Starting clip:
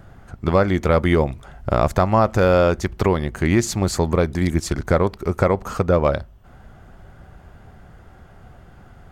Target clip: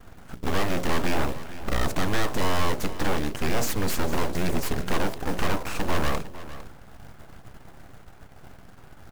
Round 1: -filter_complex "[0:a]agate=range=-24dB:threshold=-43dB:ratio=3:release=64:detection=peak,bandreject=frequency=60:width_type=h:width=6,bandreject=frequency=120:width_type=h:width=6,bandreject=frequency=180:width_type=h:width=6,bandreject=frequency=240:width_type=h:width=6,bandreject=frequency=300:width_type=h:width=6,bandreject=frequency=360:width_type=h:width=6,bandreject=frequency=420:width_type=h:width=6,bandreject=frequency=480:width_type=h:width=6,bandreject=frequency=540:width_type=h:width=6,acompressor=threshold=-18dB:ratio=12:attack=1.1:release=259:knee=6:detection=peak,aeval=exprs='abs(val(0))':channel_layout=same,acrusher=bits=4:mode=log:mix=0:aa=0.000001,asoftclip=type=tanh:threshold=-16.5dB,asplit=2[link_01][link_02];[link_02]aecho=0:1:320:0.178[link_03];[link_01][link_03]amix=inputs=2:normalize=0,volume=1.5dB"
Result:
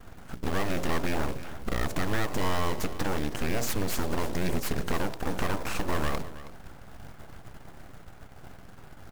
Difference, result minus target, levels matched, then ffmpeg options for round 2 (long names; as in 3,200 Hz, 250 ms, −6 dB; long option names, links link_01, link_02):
downward compressor: peak gain reduction +11 dB; echo 134 ms early
-filter_complex "[0:a]agate=range=-24dB:threshold=-43dB:ratio=3:release=64:detection=peak,bandreject=frequency=60:width_type=h:width=6,bandreject=frequency=120:width_type=h:width=6,bandreject=frequency=180:width_type=h:width=6,bandreject=frequency=240:width_type=h:width=6,bandreject=frequency=300:width_type=h:width=6,bandreject=frequency=360:width_type=h:width=6,bandreject=frequency=420:width_type=h:width=6,bandreject=frequency=480:width_type=h:width=6,bandreject=frequency=540:width_type=h:width=6,aeval=exprs='abs(val(0))':channel_layout=same,acrusher=bits=4:mode=log:mix=0:aa=0.000001,asoftclip=type=tanh:threshold=-16.5dB,asplit=2[link_01][link_02];[link_02]aecho=0:1:454:0.178[link_03];[link_01][link_03]amix=inputs=2:normalize=0,volume=1.5dB"